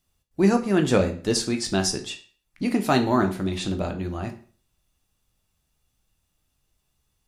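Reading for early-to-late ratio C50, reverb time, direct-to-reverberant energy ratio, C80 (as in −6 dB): 12.0 dB, 0.40 s, 5.5 dB, 16.5 dB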